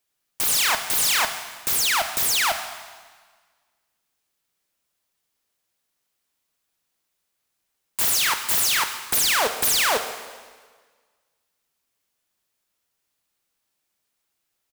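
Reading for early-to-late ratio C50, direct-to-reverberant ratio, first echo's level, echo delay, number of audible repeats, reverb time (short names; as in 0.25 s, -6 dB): 9.0 dB, 7.0 dB, -18.0 dB, 0.137 s, 1, 1.6 s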